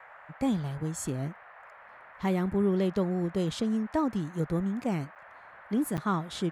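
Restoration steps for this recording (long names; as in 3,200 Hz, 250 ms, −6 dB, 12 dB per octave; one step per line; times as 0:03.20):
repair the gap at 0:05.15/0:05.97, 8.6 ms
noise reduction from a noise print 24 dB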